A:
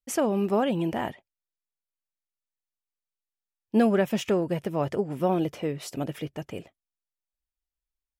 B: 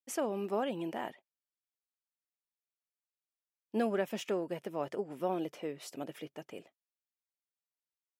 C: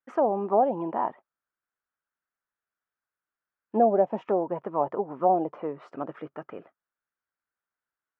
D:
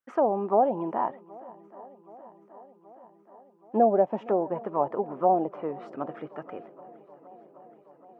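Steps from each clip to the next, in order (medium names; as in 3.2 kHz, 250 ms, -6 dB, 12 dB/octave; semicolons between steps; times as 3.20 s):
high-pass 260 Hz 12 dB/octave; trim -8 dB
touch-sensitive low-pass 730–1500 Hz down, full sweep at -28 dBFS; trim +5 dB
shuffle delay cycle 775 ms, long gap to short 1.5:1, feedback 67%, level -22.5 dB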